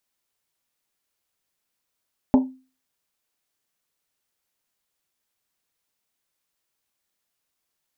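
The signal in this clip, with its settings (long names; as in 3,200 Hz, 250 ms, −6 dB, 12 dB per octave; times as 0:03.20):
drum after Risset, pitch 260 Hz, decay 0.35 s, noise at 850 Hz, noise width 230 Hz, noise 15%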